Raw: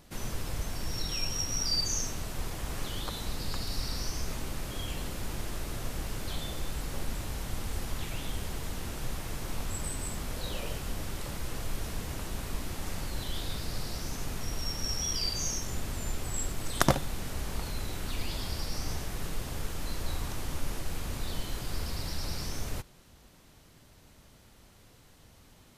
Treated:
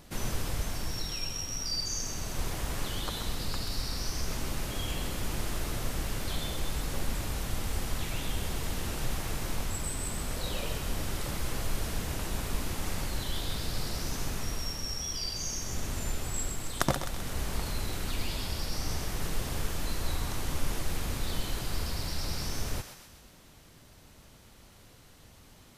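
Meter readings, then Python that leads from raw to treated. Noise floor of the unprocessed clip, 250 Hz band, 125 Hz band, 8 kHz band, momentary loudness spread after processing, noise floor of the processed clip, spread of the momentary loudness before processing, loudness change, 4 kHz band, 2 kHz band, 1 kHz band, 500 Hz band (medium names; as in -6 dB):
-57 dBFS, +1.0 dB, +1.0 dB, +0.5 dB, 3 LU, -55 dBFS, 8 LU, +1.0 dB, 0.0 dB, +1.5 dB, +1.0 dB, +0.5 dB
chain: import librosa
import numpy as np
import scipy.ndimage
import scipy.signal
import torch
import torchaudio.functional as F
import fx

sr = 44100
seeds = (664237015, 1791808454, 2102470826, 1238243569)

p1 = fx.rider(x, sr, range_db=4, speed_s=0.5)
y = p1 + fx.echo_thinned(p1, sr, ms=129, feedback_pct=56, hz=810.0, wet_db=-7.0, dry=0)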